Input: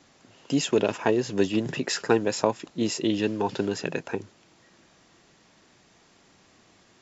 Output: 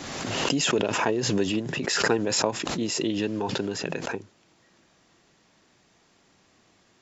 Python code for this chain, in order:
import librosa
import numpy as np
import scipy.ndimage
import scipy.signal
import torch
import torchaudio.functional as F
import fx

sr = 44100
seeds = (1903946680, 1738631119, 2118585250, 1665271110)

y = fx.pre_swell(x, sr, db_per_s=29.0)
y = y * librosa.db_to_amplitude(-3.5)